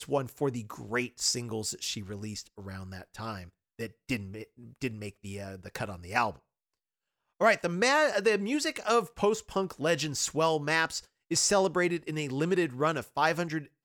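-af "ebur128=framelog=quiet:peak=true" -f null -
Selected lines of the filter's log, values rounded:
Integrated loudness:
  I:         -29.5 LUFS
  Threshold: -40.2 LUFS
Loudness range:
  LRA:        11.5 LU
  Threshold: -50.5 LUFS
  LRA low:   -39.2 LUFS
  LRA high:  -27.7 LUFS
True peak:
  Peak:       -9.9 dBFS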